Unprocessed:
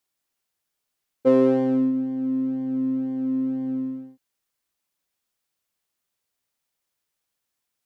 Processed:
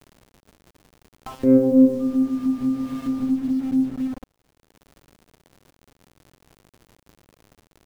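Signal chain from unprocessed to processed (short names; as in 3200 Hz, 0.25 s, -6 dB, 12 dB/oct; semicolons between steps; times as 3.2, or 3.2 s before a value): random spectral dropouts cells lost 71%; 1.99–3.25 whine 1200 Hz -33 dBFS; added harmonics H 5 -37 dB, 6 -22 dB, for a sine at -9.5 dBFS; in parallel at -7 dB: one-sided clip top -30 dBFS; on the sum: bell 1200 Hz -2 dB 1.7 oct; resonator bank F2 major, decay 0.46 s; dark delay 0.124 s, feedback 53%, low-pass 570 Hz, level -4 dB; bit-crush 8-bit; crackle 130/s -66 dBFS; upward compressor, threshold -30 dBFS; tilt shelf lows +9 dB, about 700 Hz; gain +5.5 dB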